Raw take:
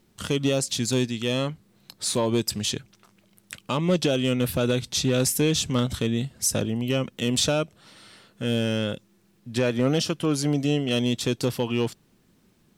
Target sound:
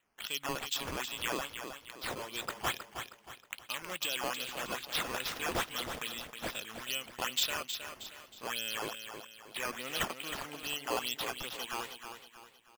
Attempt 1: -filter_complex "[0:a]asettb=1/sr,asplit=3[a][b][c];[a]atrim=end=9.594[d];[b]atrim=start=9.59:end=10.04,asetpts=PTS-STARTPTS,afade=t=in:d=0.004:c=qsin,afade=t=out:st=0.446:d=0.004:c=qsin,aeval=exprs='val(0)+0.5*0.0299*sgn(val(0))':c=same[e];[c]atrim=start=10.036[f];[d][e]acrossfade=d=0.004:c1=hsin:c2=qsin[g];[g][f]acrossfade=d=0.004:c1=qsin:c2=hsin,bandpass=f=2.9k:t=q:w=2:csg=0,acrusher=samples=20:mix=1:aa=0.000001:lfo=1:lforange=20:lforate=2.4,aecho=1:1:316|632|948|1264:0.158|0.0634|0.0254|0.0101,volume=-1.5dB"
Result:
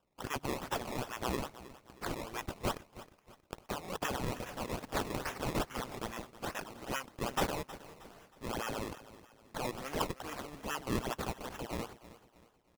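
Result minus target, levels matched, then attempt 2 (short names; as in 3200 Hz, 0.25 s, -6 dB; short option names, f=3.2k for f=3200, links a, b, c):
decimation with a swept rate: distortion +17 dB; echo-to-direct -8 dB
-filter_complex "[0:a]asettb=1/sr,asplit=3[a][b][c];[a]atrim=end=9.594[d];[b]atrim=start=9.59:end=10.04,asetpts=PTS-STARTPTS,afade=t=in:d=0.004:c=qsin,afade=t=out:st=0.446:d=0.004:c=qsin,aeval=exprs='val(0)+0.5*0.0299*sgn(val(0))':c=same[e];[c]atrim=start=10.036[f];[d][e]acrossfade=d=0.004:c1=hsin:c2=qsin[g];[g][f]acrossfade=d=0.004:c1=qsin:c2=hsin,bandpass=f=2.9k:t=q:w=2:csg=0,acrusher=samples=8:mix=1:aa=0.000001:lfo=1:lforange=8:lforate=2.4,aecho=1:1:316|632|948|1264|1580:0.398|0.159|0.0637|0.0255|0.0102,volume=-1.5dB"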